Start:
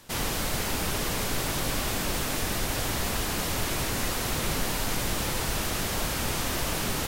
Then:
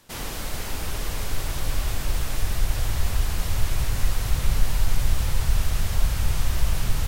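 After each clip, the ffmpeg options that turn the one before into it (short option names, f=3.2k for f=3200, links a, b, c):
-af "asubboost=boost=10.5:cutoff=88,volume=-4dB"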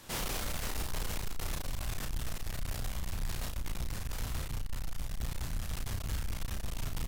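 -filter_complex "[0:a]areverse,acompressor=threshold=-25dB:ratio=6,areverse,asoftclip=type=tanh:threshold=-36.5dB,asplit=2[a][b];[b]adelay=34,volume=-4dB[c];[a][c]amix=inputs=2:normalize=0,volume=3dB"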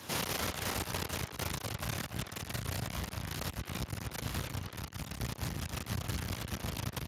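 -filter_complex "[0:a]aeval=exprs='clip(val(0),-1,0.00562)':c=same,asplit=2[a][b];[b]adelay=290,highpass=300,lowpass=3.4k,asoftclip=type=hard:threshold=-38dB,volume=-7dB[c];[a][c]amix=inputs=2:normalize=0,volume=6.5dB" -ar 32000 -c:a libspeex -b:a 36k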